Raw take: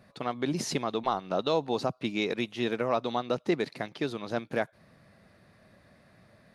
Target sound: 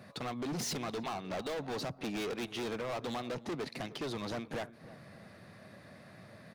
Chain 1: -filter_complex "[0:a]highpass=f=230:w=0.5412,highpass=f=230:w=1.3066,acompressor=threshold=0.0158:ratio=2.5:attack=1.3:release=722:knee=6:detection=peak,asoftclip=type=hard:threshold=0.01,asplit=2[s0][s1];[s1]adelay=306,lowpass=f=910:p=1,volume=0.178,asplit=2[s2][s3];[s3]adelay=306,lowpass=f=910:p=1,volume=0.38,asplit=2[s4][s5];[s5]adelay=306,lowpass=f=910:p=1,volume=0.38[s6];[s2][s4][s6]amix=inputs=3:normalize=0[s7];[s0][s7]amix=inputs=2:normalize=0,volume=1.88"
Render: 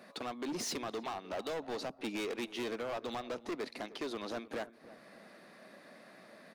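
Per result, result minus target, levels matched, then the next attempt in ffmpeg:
125 Hz band -9.5 dB; compression: peak gain reduction +4.5 dB
-filter_complex "[0:a]highpass=f=86:w=0.5412,highpass=f=86:w=1.3066,acompressor=threshold=0.0158:ratio=2.5:attack=1.3:release=722:knee=6:detection=peak,asoftclip=type=hard:threshold=0.01,asplit=2[s0][s1];[s1]adelay=306,lowpass=f=910:p=1,volume=0.178,asplit=2[s2][s3];[s3]adelay=306,lowpass=f=910:p=1,volume=0.38,asplit=2[s4][s5];[s5]adelay=306,lowpass=f=910:p=1,volume=0.38[s6];[s2][s4][s6]amix=inputs=3:normalize=0[s7];[s0][s7]amix=inputs=2:normalize=0,volume=1.88"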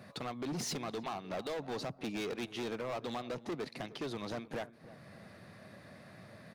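compression: peak gain reduction +4 dB
-filter_complex "[0:a]highpass=f=86:w=0.5412,highpass=f=86:w=1.3066,acompressor=threshold=0.0355:ratio=2.5:attack=1.3:release=722:knee=6:detection=peak,asoftclip=type=hard:threshold=0.01,asplit=2[s0][s1];[s1]adelay=306,lowpass=f=910:p=1,volume=0.178,asplit=2[s2][s3];[s3]adelay=306,lowpass=f=910:p=1,volume=0.38,asplit=2[s4][s5];[s5]adelay=306,lowpass=f=910:p=1,volume=0.38[s6];[s2][s4][s6]amix=inputs=3:normalize=0[s7];[s0][s7]amix=inputs=2:normalize=0,volume=1.88"

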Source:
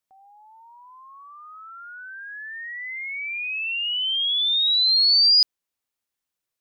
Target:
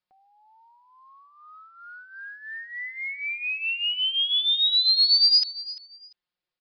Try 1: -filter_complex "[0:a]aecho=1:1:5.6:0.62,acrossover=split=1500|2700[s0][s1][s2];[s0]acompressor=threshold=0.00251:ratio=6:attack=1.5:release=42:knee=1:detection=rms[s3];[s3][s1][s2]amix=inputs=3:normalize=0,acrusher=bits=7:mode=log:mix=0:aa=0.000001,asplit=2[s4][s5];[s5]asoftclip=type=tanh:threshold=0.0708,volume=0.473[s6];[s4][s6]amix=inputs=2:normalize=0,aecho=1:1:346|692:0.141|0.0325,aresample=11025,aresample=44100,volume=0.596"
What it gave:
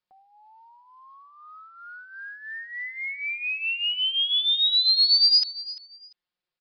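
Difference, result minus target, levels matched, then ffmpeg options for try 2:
compression: peak gain reduction -6 dB
-filter_complex "[0:a]aecho=1:1:5.6:0.62,acrossover=split=1500|2700[s0][s1][s2];[s0]acompressor=threshold=0.00112:ratio=6:attack=1.5:release=42:knee=1:detection=rms[s3];[s3][s1][s2]amix=inputs=3:normalize=0,acrusher=bits=7:mode=log:mix=0:aa=0.000001,asplit=2[s4][s5];[s5]asoftclip=type=tanh:threshold=0.0708,volume=0.473[s6];[s4][s6]amix=inputs=2:normalize=0,aecho=1:1:346|692:0.141|0.0325,aresample=11025,aresample=44100,volume=0.596"

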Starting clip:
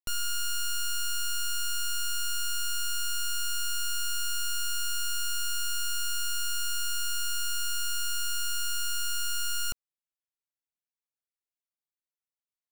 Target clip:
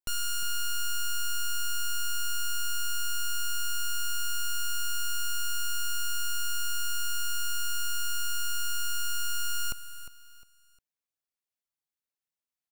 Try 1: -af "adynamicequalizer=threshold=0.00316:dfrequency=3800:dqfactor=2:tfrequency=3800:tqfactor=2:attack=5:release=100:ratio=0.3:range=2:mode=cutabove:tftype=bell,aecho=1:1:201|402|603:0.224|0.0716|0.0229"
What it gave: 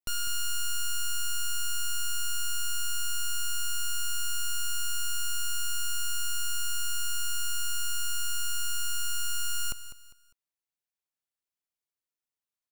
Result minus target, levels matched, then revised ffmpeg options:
echo 154 ms early
-af "adynamicequalizer=threshold=0.00316:dfrequency=3800:dqfactor=2:tfrequency=3800:tqfactor=2:attack=5:release=100:ratio=0.3:range=2:mode=cutabove:tftype=bell,aecho=1:1:355|710|1065:0.224|0.0716|0.0229"

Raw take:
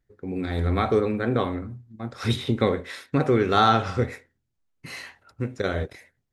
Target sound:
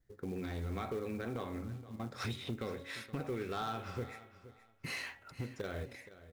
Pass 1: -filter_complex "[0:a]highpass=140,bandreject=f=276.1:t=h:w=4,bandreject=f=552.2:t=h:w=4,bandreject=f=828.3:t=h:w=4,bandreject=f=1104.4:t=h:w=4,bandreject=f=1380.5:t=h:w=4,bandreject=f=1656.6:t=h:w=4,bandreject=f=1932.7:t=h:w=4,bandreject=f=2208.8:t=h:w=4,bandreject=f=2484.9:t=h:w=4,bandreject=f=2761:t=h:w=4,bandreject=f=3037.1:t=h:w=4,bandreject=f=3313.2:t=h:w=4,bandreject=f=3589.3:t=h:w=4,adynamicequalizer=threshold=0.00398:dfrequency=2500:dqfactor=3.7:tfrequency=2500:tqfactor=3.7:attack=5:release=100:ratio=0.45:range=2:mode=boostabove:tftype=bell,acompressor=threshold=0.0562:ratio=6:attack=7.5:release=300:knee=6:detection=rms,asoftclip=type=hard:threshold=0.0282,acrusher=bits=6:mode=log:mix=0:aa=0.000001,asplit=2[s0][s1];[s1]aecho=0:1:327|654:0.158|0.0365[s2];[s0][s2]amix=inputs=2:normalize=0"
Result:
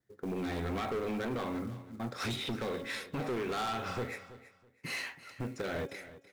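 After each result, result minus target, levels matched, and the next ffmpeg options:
compression: peak gain reduction -8 dB; echo 145 ms early; 125 Hz band -3.5 dB
-filter_complex "[0:a]highpass=140,bandreject=f=276.1:t=h:w=4,bandreject=f=552.2:t=h:w=4,bandreject=f=828.3:t=h:w=4,bandreject=f=1104.4:t=h:w=4,bandreject=f=1380.5:t=h:w=4,bandreject=f=1656.6:t=h:w=4,bandreject=f=1932.7:t=h:w=4,bandreject=f=2208.8:t=h:w=4,bandreject=f=2484.9:t=h:w=4,bandreject=f=2761:t=h:w=4,bandreject=f=3037.1:t=h:w=4,bandreject=f=3313.2:t=h:w=4,bandreject=f=3589.3:t=h:w=4,adynamicequalizer=threshold=0.00398:dfrequency=2500:dqfactor=3.7:tfrequency=2500:tqfactor=3.7:attack=5:release=100:ratio=0.45:range=2:mode=boostabove:tftype=bell,acompressor=threshold=0.0178:ratio=6:attack=7.5:release=300:knee=6:detection=rms,asoftclip=type=hard:threshold=0.0282,acrusher=bits=6:mode=log:mix=0:aa=0.000001,asplit=2[s0][s1];[s1]aecho=0:1:327|654:0.158|0.0365[s2];[s0][s2]amix=inputs=2:normalize=0"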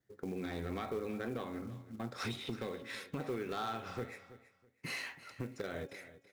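echo 145 ms early; 125 Hz band -3.5 dB
-filter_complex "[0:a]highpass=140,bandreject=f=276.1:t=h:w=4,bandreject=f=552.2:t=h:w=4,bandreject=f=828.3:t=h:w=4,bandreject=f=1104.4:t=h:w=4,bandreject=f=1380.5:t=h:w=4,bandreject=f=1656.6:t=h:w=4,bandreject=f=1932.7:t=h:w=4,bandreject=f=2208.8:t=h:w=4,bandreject=f=2484.9:t=h:w=4,bandreject=f=2761:t=h:w=4,bandreject=f=3037.1:t=h:w=4,bandreject=f=3313.2:t=h:w=4,bandreject=f=3589.3:t=h:w=4,adynamicequalizer=threshold=0.00398:dfrequency=2500:dqfactor=3.7:tfrequency=2500:tqfactor=3.7:attack=5:release=100:ratio=0.45:range=2:mode=boostabove:tftype=bell,acompressor=threshold=0.0178:ratio=6:attack=7.5:release=300:knee=6:detection=rms,asoftclip=type=hard:threshold=0.0282,acrusher=bits=6:mode=log:mix=0:aa=0.000001,asplit=2[s0][s1];[s1]aecho=0:1:472|944:0.158|0.0365[s2];[s0][s2]amix=inputs=2:normalize=0"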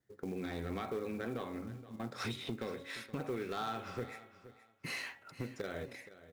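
125 Hz band -3.5 dB
-filter_complex "[0:a]bandreject=f=276.1:t=h:w=4,bandreject=f=552.2:t=h:w=4,bandreject=f=828.3:t=h:w=4,bandreject=f=1104.4:t=h:w=4,bandreject=f=1380.5:t=h:w=4,bandreject=f=1656.6:t=h:w=4,bandreject=f=1932.7:t=h:w=4,bandreject=f=2208.8:t=h:w=4,bandreject=f=2484.9:t=h:w=4,bandreject=f=2761:t=h:w=4,bandreject=f=3037.1:t=h:w=4,bandreject=f=3313.2:t=h:w=4,bandreject=f=3589.3:t=h:w=4,adynamicequalizer=threshold=0.00398:dfrequency=2500:dqfactor=3.7:tfrequency=2500:tqfactor=3.7:attack=5:release=100:ratio=0.45:range=2:mode=boostabove:tftype=bell,acompressor=threshold=0.0178:ratio=6:attack=7.5:release=300:knee=6:detection=rms,asoftclip=type=hard:threshold=0.0282,acrusher=bits=6:mode=log:mix=0:aa=0.000001,asplit=2[s0][s1];[s1]aecho=0:1:472|944:0.158|0.0365[s2];[s0][s2]amix=inputs=2:normalize=0"

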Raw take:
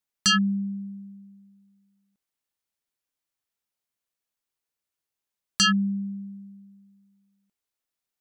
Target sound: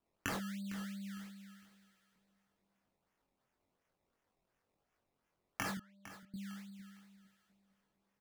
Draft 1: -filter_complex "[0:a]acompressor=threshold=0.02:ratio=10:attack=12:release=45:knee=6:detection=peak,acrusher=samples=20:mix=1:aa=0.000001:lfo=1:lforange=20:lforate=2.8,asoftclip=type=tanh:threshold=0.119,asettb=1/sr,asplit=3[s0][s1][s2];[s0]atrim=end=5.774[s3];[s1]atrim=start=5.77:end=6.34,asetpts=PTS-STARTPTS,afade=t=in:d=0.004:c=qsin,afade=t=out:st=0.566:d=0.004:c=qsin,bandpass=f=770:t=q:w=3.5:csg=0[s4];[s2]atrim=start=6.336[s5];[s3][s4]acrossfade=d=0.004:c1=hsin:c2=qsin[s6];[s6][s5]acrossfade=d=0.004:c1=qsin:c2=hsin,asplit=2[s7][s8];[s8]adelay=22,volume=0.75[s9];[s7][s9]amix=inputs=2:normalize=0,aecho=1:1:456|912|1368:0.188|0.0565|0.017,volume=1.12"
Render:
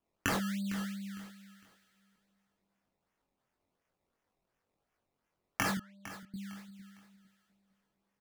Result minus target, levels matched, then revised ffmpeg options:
compression: peak gain reduction -7 dB; saturation: distortion -8 dB
-filter_complex "[0:a]acompressor=threshold=0.00794:ratio=10:attack=12:release=45:knee=6:detection=peak,acrusher=samples=20:mix=1:aa=0.000001:lfo=1:lforange=20:lforate=2.8,asoftclip=type=tanh:threshold=0.0531,asettb=1/sr,asplit=3[s0][s1][s2];[s0]atrim=end=5.774[s3];[s1]atrim=start=5.77:end=6.34,asetpts=PTS-STARTPTS,afade=t=in:d=0.004:c=qsin,afade=t=out:st=0.566:d=0.004:c=qsin,bandpass=f=770:t=q:w=3.5:csg=0[s4];[s2]atrim=start=6.336[s5];[s3][s4]acrossfade=d=0.004:c1=hsin:c2=qsin[s6];[s6][s5]acrossfade=d=0.004:c1=qsin:c2=hsin,asplit=2[s7][s8];[s8]adelay=22,volume=0.75[s9];[s7][s9]amix=inputs=2:normalize=0,aecho=1:1:456|912|1368:0.188|0.0565|0.017,volume=1.12"

